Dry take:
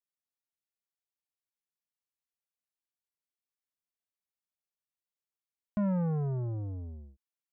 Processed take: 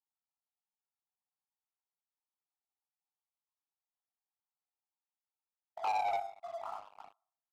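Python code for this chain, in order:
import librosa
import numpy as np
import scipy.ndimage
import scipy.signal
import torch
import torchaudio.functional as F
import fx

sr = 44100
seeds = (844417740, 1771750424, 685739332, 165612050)

y = fx.sine_speech(x, sr)
y = fx.room_shoebox(y, sr, seeds[0], volume_m3=810.0, walls='furnished', distance_m=4.3)
y = fx.vibrato(y, sr, rate_hz=1.4, depth_cents=9.2)
y = fx.echo_feedback(y, sr, ms=105, feedback_pct=22, wet_db=-20.0)
y = y * np.sin(2.0 * np.pi * 50.0 * np.arange(len(y)) / sr)
y = fx.brickwall_bandpass(y, sr, low_hz=640.0, high_hz=1400.0)
y = fx.leveller(y, sr, passes=3)
y = fx.doppler_dist(y, sr, depth_ms=0.11)
y = y * librosa.db_to_amplitude(2.0)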